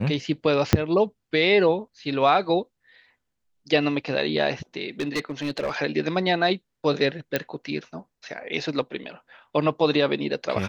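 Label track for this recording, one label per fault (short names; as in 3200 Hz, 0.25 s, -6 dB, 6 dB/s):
0.730000	0.730000	pop -3 dBFS
5.000000	5.710000	clipped -21 dBFS
7.360000	7.360000	pop -9 dBFS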